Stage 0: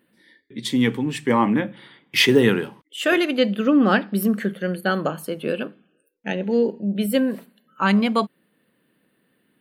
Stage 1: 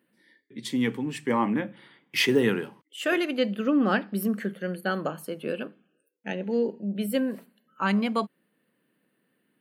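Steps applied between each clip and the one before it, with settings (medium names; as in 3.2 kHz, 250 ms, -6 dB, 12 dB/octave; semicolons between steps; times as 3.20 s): high-pass 120 Hz; peaking EQ 3.6 kHz -4 dB 0.29 oct; trim -6 dB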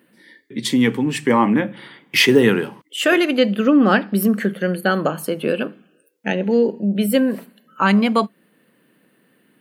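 reverberation, pre-delay 76 ms, DRR 43 dB; in parallel at +0.5 dB: compression, threshold -33 dBFS, peak gain reduction 15.5 dB; on the sum: trim +7 dB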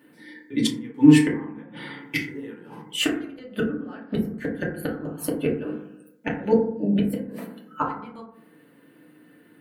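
inverted gate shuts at -10 dBFS, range -29 dB; FDN reverb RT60 0.67 s, low-frequency decay 1.3×, high-frequency decay 0.3×, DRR -4 dB; trim -3 dB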